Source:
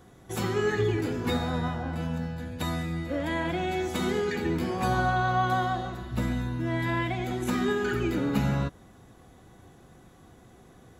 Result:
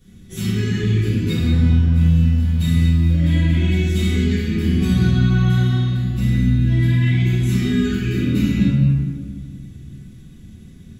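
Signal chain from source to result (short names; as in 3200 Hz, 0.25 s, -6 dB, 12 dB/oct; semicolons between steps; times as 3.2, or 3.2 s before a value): EQ curve 200 Hz 0 dB, 850 Hz -28 dB, 2500 Hz -3 dB; 1.93–3.11 sample gate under -49 dBFS; reverb RT60 1.9 s, pre-delay 4 ms, DRR -12 dB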